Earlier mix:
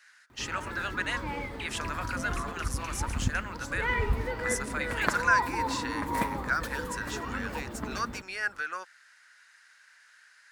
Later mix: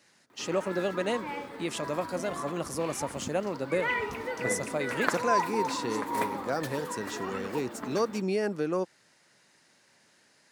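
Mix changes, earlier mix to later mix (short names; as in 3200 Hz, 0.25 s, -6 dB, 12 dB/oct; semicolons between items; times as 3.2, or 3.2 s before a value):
speech: remove resonant high-pass 1500 Hz, resonance Q 4.5; second sound: entry +2.30 s; master: add HPF 250 Hz 12 dB/oct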